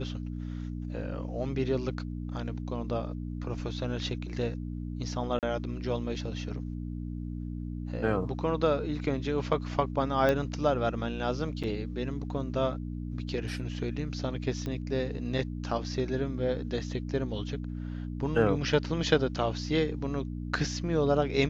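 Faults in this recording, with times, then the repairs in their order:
mains hum 60 Hz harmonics 5 −36 dBFS
0:05.39–0:05.43: drop-out 38 ms
0:10.29: click −15 dBFS
0:11.63–0:11.64: drop-out 6.4 ms
0:14.66: click −23 dBFS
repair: click removal
hum removal 60 Hz, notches 5
repair the gap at 0:05.39, 38 ms
repair the gap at 0:11.63, 6.4 ms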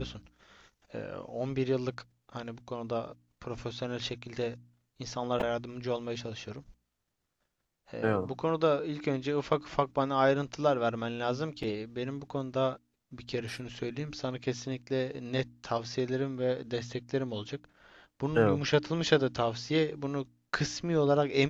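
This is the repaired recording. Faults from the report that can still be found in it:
none of them is left

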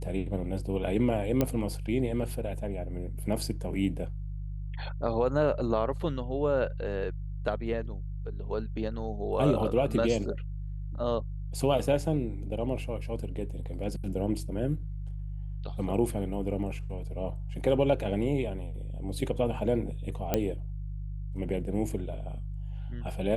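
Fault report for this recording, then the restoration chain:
mains hum 50 Hz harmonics 3 −36 dBFS
0:01.41: click −12 dBFS
0:20.34: click −11 dBFS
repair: click removal
hum removal 50 Hz, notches 3

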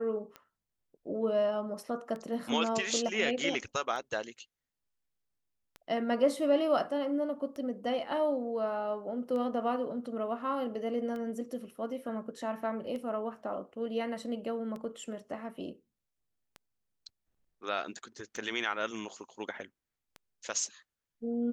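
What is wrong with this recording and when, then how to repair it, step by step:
scratch tick 33 1/3 rpm −29 dBFS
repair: click removal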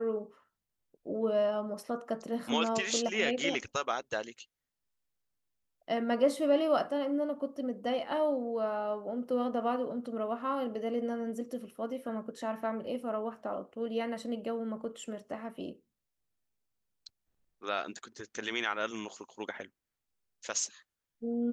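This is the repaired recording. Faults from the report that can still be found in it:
none of them is left

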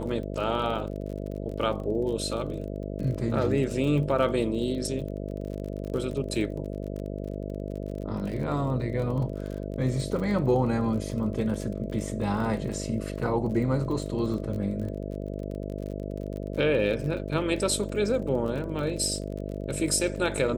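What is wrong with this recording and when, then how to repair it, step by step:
mains buzz 50 Hz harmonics 13 −34 dBFS
surface crackle 36 per second −35 dBFS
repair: click removal
hum removal 50 Hz, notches 13

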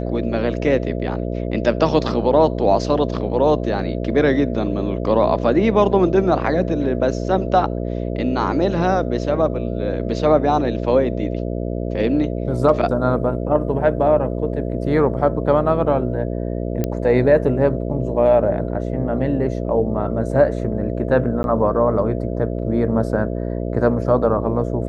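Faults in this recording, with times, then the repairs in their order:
mains buzz 60 Hz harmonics 11 −24 dBFS
0:16.84: click −9 dBFS
0:21.43–0:21.44: drop-out 11 ms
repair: click removal
hum removal 60 Hz, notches 11
repair the gap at 0:21.43, 11 ms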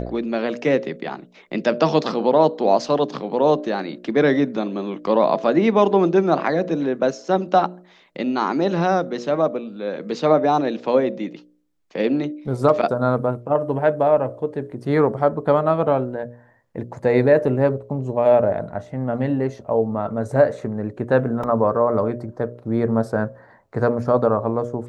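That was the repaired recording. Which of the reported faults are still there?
none of them is left

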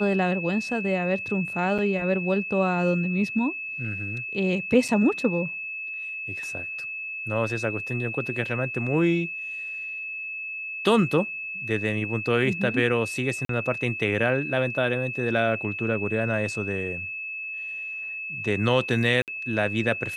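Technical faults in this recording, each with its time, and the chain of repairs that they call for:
whistle 2,600 Hz −31 dBFS
0:01.78–0:01.79: drop-out 6.3 ms
0:04.88–0:04.89: drop-out 5.5 ms
0:13.45–0:13.49: drop-out 43 ms
0:19.22–0:19.28: drop-out 58 ms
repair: notch filter 2,600 Hz, Q 30
repair the gap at 0:01.78, 6.3 ms
repair the gap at 0:04.88, 5.5 ms
repair the gap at 0:13.45, 43 ms
repair the gap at 0:19.22, 58 ms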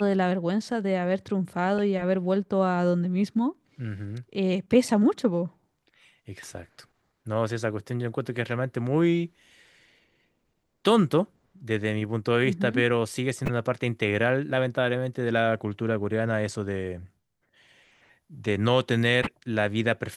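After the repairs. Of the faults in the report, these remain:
none of them is left

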